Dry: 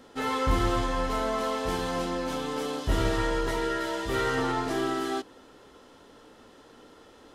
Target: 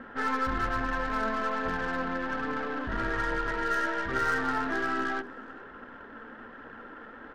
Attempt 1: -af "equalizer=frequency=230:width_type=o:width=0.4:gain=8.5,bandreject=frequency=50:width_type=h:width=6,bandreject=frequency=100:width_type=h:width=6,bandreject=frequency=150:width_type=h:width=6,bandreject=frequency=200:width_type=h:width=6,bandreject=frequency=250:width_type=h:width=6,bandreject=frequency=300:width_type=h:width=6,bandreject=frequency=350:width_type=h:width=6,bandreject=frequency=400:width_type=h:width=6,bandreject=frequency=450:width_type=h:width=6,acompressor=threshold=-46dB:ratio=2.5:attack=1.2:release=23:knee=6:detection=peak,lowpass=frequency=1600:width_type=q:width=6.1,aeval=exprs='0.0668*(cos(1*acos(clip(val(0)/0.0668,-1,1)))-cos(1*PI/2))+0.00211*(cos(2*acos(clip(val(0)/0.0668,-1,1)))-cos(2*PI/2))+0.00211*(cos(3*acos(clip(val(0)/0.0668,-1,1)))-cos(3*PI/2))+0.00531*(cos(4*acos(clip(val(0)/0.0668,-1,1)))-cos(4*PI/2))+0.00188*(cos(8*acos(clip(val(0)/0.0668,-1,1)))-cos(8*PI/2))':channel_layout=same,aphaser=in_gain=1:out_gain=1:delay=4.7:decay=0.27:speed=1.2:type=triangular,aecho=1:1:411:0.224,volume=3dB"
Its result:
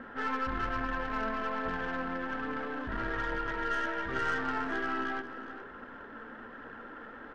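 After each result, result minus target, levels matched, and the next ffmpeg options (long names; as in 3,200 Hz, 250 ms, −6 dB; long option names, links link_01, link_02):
echo-to-direct +10.5 dB; downward compressor: peak gain reduction +4 dB
-af "equalizer=frequency=230:width_type=o:width=0.4:gain=8.5,bandreject=frequency=50:width_type=h:width=6,bandreject=frequency=100:width_type=h:width=6,bandreject=frequency=150:width_type=h:width=6,bandreject=frequency=200:width_type=h:width=6,bandreject=frequency=250:width_type=h:width=6,bandreject=frequency=300:width_type=h:width=6,bandreject=frequency=350:width_type=h:width=6,bandreject=frequency=400:width_type=h:width=6,bandreject=frequency=450:width_type=h:width=6,acompressor=threshold=-46dB:ratio=2.5:attack=1.2:release=23:knee=6:detection=peak,lowpass=frequency=1600:width_type=q:width=6.1,aeval=exprs='0.0668*(cos(1*acos(clip(val(0)/0.0668,-1,1)))-cos(1*PI/2))+0.00211*(cos(2*acos(clip(val(0)/0.0668,-1,1)))-cos(2*PI/2))+0.00211*(cos(3*acos(clip(val(0)/0.0668,-1,1)))-cos(3*PI/2))+0.00531*(cos(4*acos(clip(val(0)/0.0668,-1,1)))-cos(4*PI/2))+0.00188*(cos(8*acos(clip(val(0)/0.0668,-1,1)))-cos(8*PI/2))':channel_layout=same,aphaser=in_gain=1:out_gain=1:delay=4.7:decay=0.27:speed=1.2:type=triangular,aecho=1:1:411:0.0668,volume=3dB"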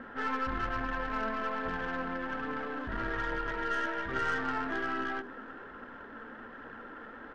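downward compressor: peak gain reduction +4 dB
-af "equalizer=frequency=230:width_type=o:width=0.4:gain=8.5,bandreject=frequency=50:width_type=h:width=6,bandreject=frequency=100:width_type=h:width=6,bandreject=frequency=150:width_type=h:width=6,bandreject=frequency=200:width_type=h:width=6,bandreject=frequency=250:width_type=h:width=6,bandreject=frequency=300:width_type=h:width=6,bandreject=frequency=350:width_type=h:width=6,bandreject=frequency=400:width_type=h:width=6,bandreject=frequency=450:width_type=h:width=6,acompressor=threshold=-39.5dB:ratio=2.5:attack=1.2:release=23:knee=6:detection=peak,lowpass=frequency=1600:width_type=q:width=6.1,aeval=exprs='0.0668*(cos(1*acos(clip(val(0)/0.0668,-1,1)))-cos(1*PI/2))+0.00211*(cos(2*acos(clip(val(0)/0.0668,-1,1)))-cos(2*PI/2))+0.00211*(cos(3*acos(clip(val(0)/0.0668,-1,1)))-cos(3*PI/2))+0.00531*(cos(4*acos(clip(val(0)/0.0668,-1,1)))-cos(4*PI/2))+0.00188*(cos(8*acos(clip(val(0)/0.0668,-1,1)))-cos(8*PI/2))':channel_layout=same,aphaser=in_gain=1:out_gain=1:delay=4.7:decay=0.27:speed=1.2:type=triangular,aecho=1:1:411:0.0668,volume=3dB"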